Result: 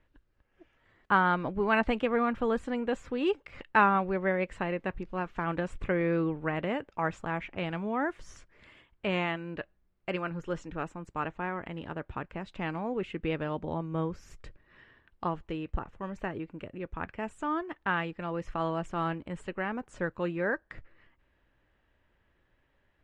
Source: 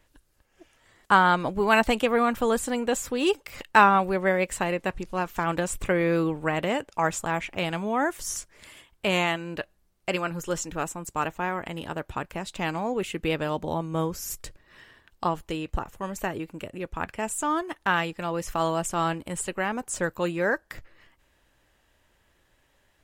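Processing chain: low-pass 2.2 kHz 12 dB/octave; peaking EQ 780 Hz -4 dB 1.4 oct; trim -3 dB

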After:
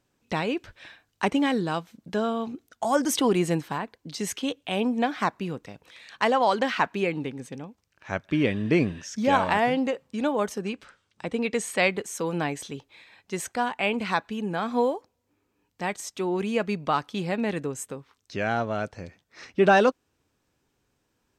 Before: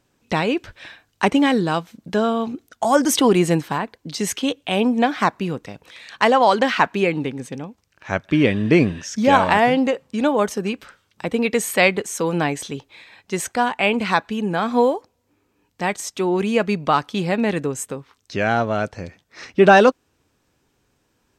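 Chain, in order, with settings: 10.59–11.91 s: low-pass 10 kHz 24 dB/octave; trim -7 dB

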